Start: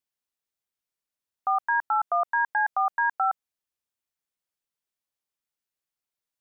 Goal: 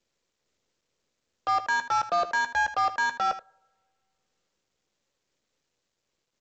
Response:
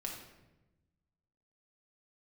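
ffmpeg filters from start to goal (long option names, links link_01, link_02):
-filter_complex "[0:a]acrossover=split=470[link_01][link_02];[link_02]acompressor=threshold=-32dB:ratio=4[link_03];[link_01][link_03]amix=inputs=2:normalize=0,lowshelf=frequency=650:width_type=q:width=3:gain=7,alimiter=level_in=5dB:limit=-24dB:level=0:latency=1:release=23,volume=-5dB,asplit=2[link_04][link_05];[1:a]atrim=start_sample=2205,asetrate=34839,aresample=44100[link_06];[link_05][link_06]afir=irnorm=-1:irlink=0,volume=-10dB[link_07];[link_04][link_07]amix=inputs=2:normalize=0,aeval=exprs='0.0531*(cos(1*acos(clip(val(0)/0.0531,-1,1)))-cos(1*PI/2))+0.00596*(cos(7*acos(clip(val(0)/0.0531,-1,1)))-cos(7*PI/2))':channel_layout=same,aecho=1:1:14|78:0.282|0.211,volume=8.5dB" -ar 16000 -c:a pcm_mulaw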